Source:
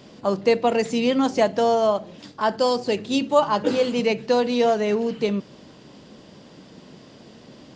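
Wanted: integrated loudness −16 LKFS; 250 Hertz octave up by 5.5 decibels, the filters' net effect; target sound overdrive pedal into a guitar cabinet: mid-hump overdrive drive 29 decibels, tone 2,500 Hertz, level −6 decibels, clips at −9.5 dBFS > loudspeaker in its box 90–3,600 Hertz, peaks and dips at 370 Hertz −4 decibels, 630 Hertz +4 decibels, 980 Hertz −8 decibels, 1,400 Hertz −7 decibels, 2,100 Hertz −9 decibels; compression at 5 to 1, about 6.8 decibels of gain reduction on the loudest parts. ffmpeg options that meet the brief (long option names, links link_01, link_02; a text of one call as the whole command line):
ffmpeg -i in.wav -filter_complex "[0:a]equalizer=frequency=250:width_type=o:gain=6.5,acompressor=threshold=-19dB:ratio=5,asplit=2[link_01][link_02];[link_02]highpass=frequency=720:poles=1,volume=29dB,asoftclip=type=tanh:threshold=-9.5dB[link_03];[link_01][link_03]amix=inputs=2:normalize=0,lowpass=frequency=2500:poles=1,volume=-6dB,highpass=90,equalizer=frequency=370:width_type=q:width=4:gain=-4,equalizer=frequency=630:width_type=q:width=4:gain=4,equalizer=frequency=980:width_type=q:width=4:gain=-8,equalizer=frequency=1400:width_type=q:width=4:gain=-7,equalizer=frequency=2100:width_type=q:width=4:gain=-9,lowpass=frequency=3600:width=0.5412,lowpass=frequency=3600:width=1.3066,volume=3dB" out.wav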